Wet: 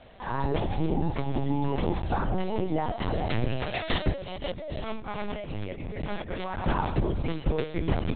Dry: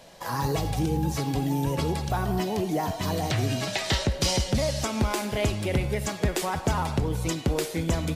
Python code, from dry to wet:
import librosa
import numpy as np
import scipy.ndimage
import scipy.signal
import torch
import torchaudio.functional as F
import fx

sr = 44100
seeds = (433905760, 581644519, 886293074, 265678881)

y = fx.high_shelf(x, sr, hz=2800.0, db=-4.5)
y = fx.over_compress(y, sr, threshold_db=-34.0, ratio=-1.0, at=(4.2, 6.66), fade=0.02)
y = fx.lpc_vocoder(y, sr, seeds[0], excitation='pitch_kept', order=10)